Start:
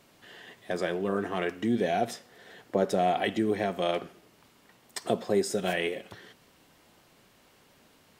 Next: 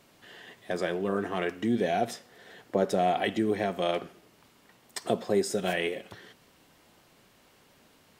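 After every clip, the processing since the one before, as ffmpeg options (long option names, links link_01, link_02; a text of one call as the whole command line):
ffmpeg -i in.wav -af anull out.wav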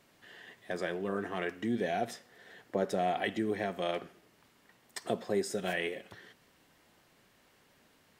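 ffmpeg -i in.wav -af "equalizer=frequency=1800:width_type=o:width=0.5:gain=4,volume=-5.5dB" out.wav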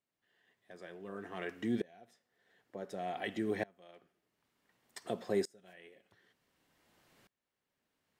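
ffmpeg -i in.wav -af "aeval=exprs='val(0)*pow(10,-28*if(lt(mod(-0.55*n/s,1),2*abs(-0.55)/1000),1-mod(-0.55*n/s,1)/(2*abs(-0.55)/1000),(mod(-0.55*n/s,1)-2*abs(-0.55)/1000)/(1-2*abs(-0.55)/1000))/20)':channel_layout=same" out.wav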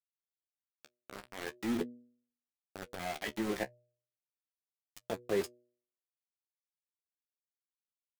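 ffmpeg -i in.wav -af "aeval=exprs='val(0)*gte(abs(val(0)),0.0158)':channel_layout=same,flanger=delay=8.4:depth=7:regen=30:speed=0.42:shape=triangular,bandreject=frequency=121.3:width_type=h:width=4,bandreject=frequency=242.6:width_type=h:width=4,bandreject=frequency=363.9:width_type=h:width=4,bandreject=frequency=485.2:width_type=h:width=4,bandreject=frequency=606.5:width_type=h:width=4,volume=5dB" out.wav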